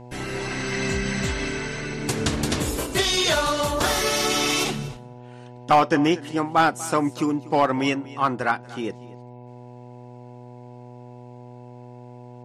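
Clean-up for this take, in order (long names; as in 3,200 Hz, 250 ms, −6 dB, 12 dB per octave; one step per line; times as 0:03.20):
clipped peaks rebuilt −9.5 dBFS
hum removal 122.7 Hz, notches 8
echo removal 240 ms −19.5 dB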